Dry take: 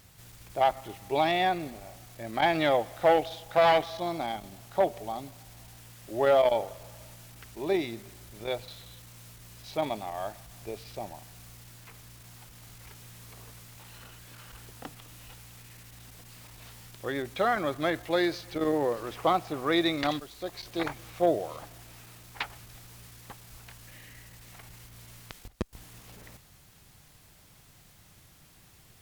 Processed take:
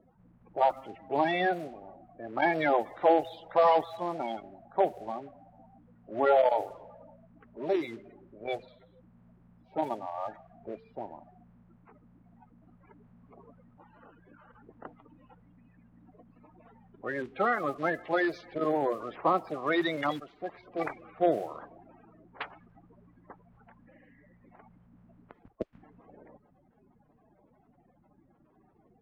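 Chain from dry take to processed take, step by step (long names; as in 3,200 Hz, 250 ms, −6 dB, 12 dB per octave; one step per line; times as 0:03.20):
spectral magnitudes quantised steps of 30 dB
low-pass that shuts in the quiet parts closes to 740 Hz, open at −26 dBFS
three-way crossover with the lows and the highs turned down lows −14 dB, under 190 Hz, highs −13 dB, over 2,700 Hz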